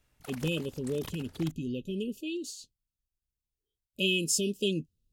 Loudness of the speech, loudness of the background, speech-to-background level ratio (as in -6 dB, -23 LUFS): -32.0 LUFS, -47.5 LUFS, 15.5 dB